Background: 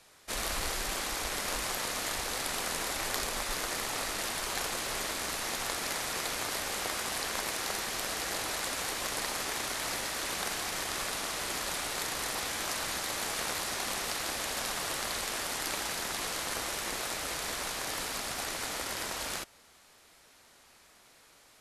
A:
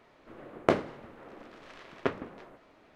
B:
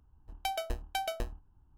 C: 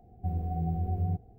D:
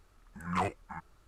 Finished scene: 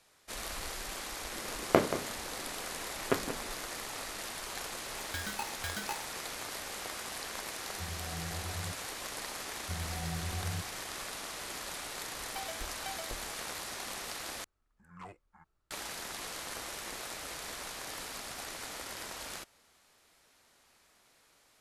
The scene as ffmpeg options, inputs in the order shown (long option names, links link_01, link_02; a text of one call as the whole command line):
ffmpeg -i bed.wav -i cue0.wav -i cue1.wav -i cue2.wav -i cue3.wav -filter_complex "[2:a]asplit=2[link_01][link_02];[3:a]asplit=2[link_03][link_04];[0:a]volume=-6.5dB[link_05];[1:a]aecho=1:1:179:0.282[link_06];[link_01]aeval=exprs='val(0)*sgn(sin(2*PI*860*n/s))':channel_layout=same[link_07];[link_05]asplit=2[link_08][link_09];[link_08]atrim=end=14.444[link_10];[4:a]atrim=end=1.27,asetpts=PTS-STARTPTS,volume=-17.5dB[link_11];[link_09]atrim=start=15.706[link_12];[link_06]atrim=end=2.95,asetpts=PTS-STARTPTS,volume=-0.5dB,afade=type=in:duration=0.004:curve=hsin,afade=type=out:start_time=2.946:duration=0.004:curve=hsin,adelay=1060[link_13];[link_07]atrim=end=1.77,asetpts=PTS-STARTPTS,volume=-5.5dB,afade=type=in:duration=0.004:curve=hsin,afade=type=out:start_time=1.766:duration=0.004:curve=hsin,adelay=206829S[link_14];[link_03]atrim=end=1.38,asetpts=PTS-STARTPTS,volume=-11.5dB,afade=type=in:duration=0.004:curve=hsin,afade=type=out:start_time=1.376:duration=0.004:curve=hsin,adelay=7560[link_15];[link_04]atrim=end=1.38,asetpts=PTS-STARTPTS,volume=-8dB,afade=type=in:duration=0.004:curve=hsin,afade=type=out:start_time=1.376:duration=0.004:curve=hsin,adelay=9450[link_16];[link_02]atrim=end=1.77,asetpts=PTS-STARTPTS,volume=-9dB,afade=type=in:duration=0.004:curve=hsin,afade=type=out:start_time=1.766:duration=0.004:curve=hsin,adelay=11910[link_17];[link_10][link_11]acrossfade=duration=0.004:curve1=hsin:curve2=hsin[link_18];[link_18][link_12]acrossfade=duration=0.004:curve1=hsin:curve2=hsin[link_19];[link_19][link_13][link_14][link_15][link_16][link_17]amix=inputs=6:normalize=0" out.wav